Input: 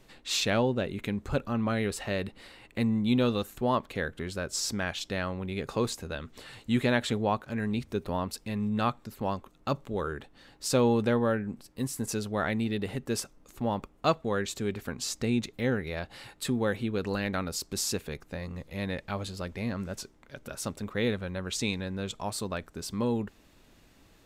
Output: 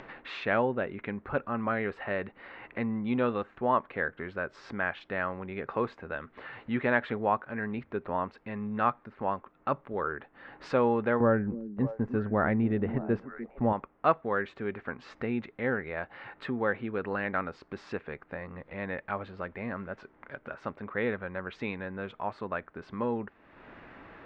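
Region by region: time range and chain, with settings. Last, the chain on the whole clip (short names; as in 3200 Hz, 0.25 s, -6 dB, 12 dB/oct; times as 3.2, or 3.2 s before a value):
11.2–13.73 tilt -3.5 dB/oct + gate -34 dBFS, range -10 dB + delay with a stepping band-pass 0.301 s, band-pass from 260 Hz, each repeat 1.4 oct, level -9 dB
whole clip: LPF 1800 Hz 24 dB/oct; tilt +3.5 dB/oct; upward compressor, threshold -40 dBFS; gain +3 dB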